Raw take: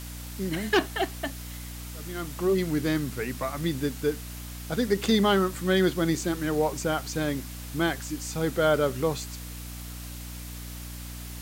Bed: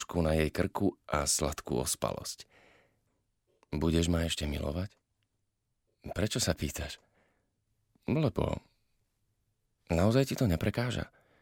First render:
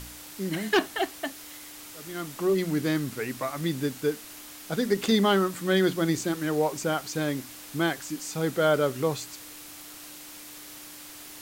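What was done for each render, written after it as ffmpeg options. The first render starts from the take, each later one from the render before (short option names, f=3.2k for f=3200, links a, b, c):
-af "bandreject=f=60:t=h:w=4,bandreject=f=120:t=h:w=4,bandreject=f=180:t=h:w=4,bandreject=f=240:t=h:w=4"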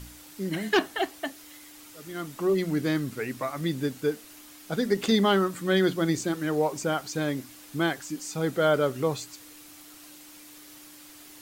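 -af "afftdn=nr=6:nf=-45"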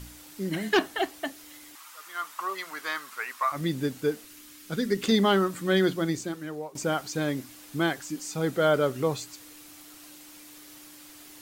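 -filter_complex "[0:a]asettb=1/sr,asplit=3[a][b][c];[a]atrim=end=1.754[d];[b]atrim=start=1.75:end=3.52,asetpts=PTS-STARTPTS,afade=t=in:d=0.004:c=qsin,afade=t=out:st=1.766:d=0.004:c=qsin,highpass=f=1.1k:t=q:w=3.1[e];[c]atrim=start=3.516[f];[d][e]acrossfade=d=0.004:c1=hsin:c2=qsin[g];[g][f]acrossfade=d=0.004:c1=qsin:c2=hsin,asettb=1/sr,asplit=3[h][i][j];[h]atrim=end=4.264[k];[i]atrim=start=4.26:end=5.07,asetpts=PTS-STARTPTS,afade=t=in:d=0.004:c=qsin,afade=t=out:st=0.806:d=0.004:c=qsin,equalizer=f=730:w=1.8:g=-11[l];[j]atrim=start=5.066[m];[k][l]acrossfade=d=0.004:c1=hsin:c2=qsin[n];[n][m]acrossfade=d=0.004:c1=qsin:c2=hsin,asplit=2[o][p];[o]atrim=end=6.75,asetpts=PTS-STARTPTS,afade=t=out:st=5.81:d=0.94:silence=0.141254[q];[p]atrim=start=6.75,asetpts=PTS-STARTPTS,afade=t=in:d=0.004:c=hsin:silence=0.141254[r];[q][r]concat=n=2:v=0:a=1"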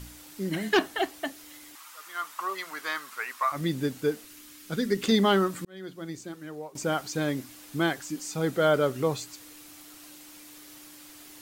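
-filter_complex "[0:a]asplit=2[a][b];[a]atrim=end=5.65,asetpts=PTS-STARTPTS,afade=t=out:st=5.646:d=0.004:c=hsin[c];[b]atrim=start=5.65,asetpts=PTS-STARTPTS,afade=t=in:d=1.32[d];[c][d]concat=n=2:v=0:a=1"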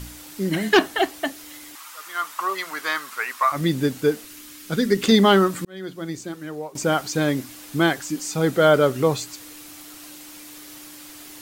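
-af "volume=7dB"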